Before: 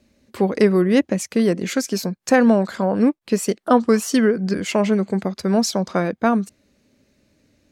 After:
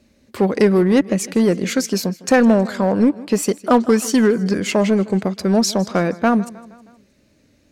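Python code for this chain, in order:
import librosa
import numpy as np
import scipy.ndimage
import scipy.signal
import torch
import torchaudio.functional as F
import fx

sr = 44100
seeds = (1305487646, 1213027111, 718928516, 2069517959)

p1 = fx.echo_feedback(x, sr, ms=157, feedback_pct=54, wet_db=-21.0)
p2 = fx.wow_flutter(p1, sr, seeds[0], rate_hz=2.1, depth_cents=22.0)
p3 = 10.0 ** (-15.5 / 20.0) * (np.abs((p2 / 10.0 ** (-15.5 / 20.0) + 3.0) % 4.0 - 2.0) - 1.0)
p4 = p2 + F.gain(torch.from_numpy(p3), -11.0).numpy()
y = F.gain(torch.from_numpy(p4), 1.0).numpy()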